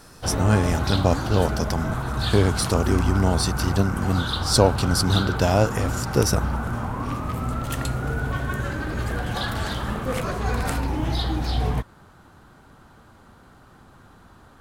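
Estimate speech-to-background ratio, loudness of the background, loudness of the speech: 4.0 dB, -27.0 LUFS, -23.0 LUFS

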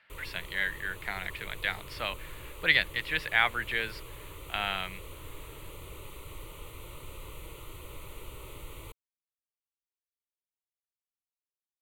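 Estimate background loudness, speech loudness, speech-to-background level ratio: -46.5 LUFS, -30.5 LUFS, 16.0 dB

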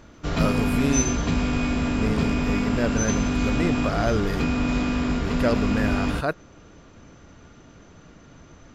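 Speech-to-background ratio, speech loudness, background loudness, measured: -3.5 dB, -28.0 LUFS, -24.5 LUFS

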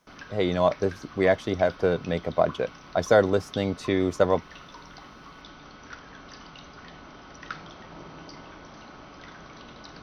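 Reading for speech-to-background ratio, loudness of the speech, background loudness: 19.5 dB, -25.0 LUFS, -44.5 LUFS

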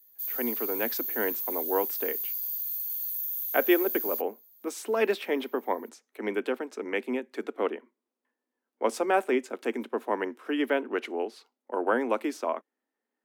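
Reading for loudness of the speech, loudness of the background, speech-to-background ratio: -30.5 LUFS, -30.0 LUFS, -0.5 dB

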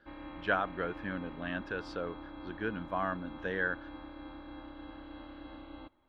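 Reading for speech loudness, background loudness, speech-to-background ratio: -36.5 LUFS, -47.5 LUFS, 11.0 dB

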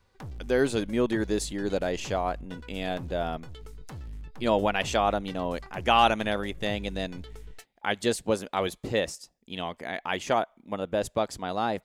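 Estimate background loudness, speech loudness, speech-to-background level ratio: -44.5 LUFS, -28.5 LUFS, 16.0 dB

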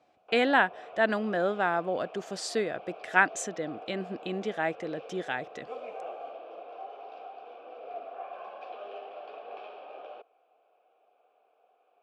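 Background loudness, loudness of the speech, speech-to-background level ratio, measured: -44.5 LUFS, -29.5 LUFS, 15.0 dB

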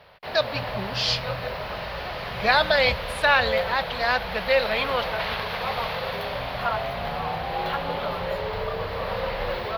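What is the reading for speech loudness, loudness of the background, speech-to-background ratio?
-23.5 LUFS, -29.5 LUFS, 6.0 dB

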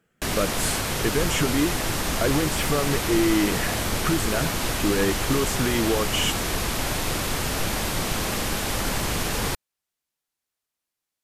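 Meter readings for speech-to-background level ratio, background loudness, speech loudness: 0.0 dB, -26.0 LUFS, -26.0 LUFS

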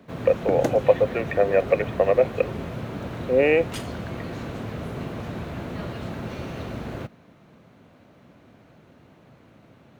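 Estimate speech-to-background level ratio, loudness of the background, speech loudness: 10.5 dB, -33.0 LUFS, -22.5 LUFS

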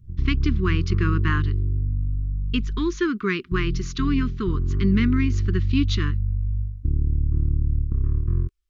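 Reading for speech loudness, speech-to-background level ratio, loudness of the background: -26.0 LUFS, -0.5 dB, -25.5 LUFS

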